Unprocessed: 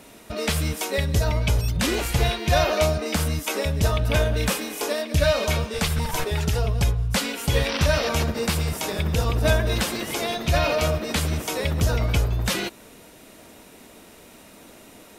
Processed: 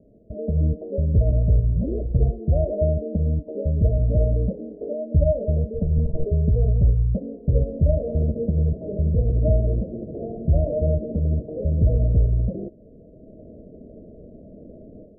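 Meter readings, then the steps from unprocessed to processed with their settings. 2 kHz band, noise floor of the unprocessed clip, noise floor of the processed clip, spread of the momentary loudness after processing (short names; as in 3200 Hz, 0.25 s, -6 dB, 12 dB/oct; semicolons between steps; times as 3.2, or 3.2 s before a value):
under -40 dB, -48 dBFS, -47 dBFS, 8 LU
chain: low shelf 120 Hz +9 dB; AGC; rippled Chebyshev low-pass 650 Hz, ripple 3 dB; gain -5 dB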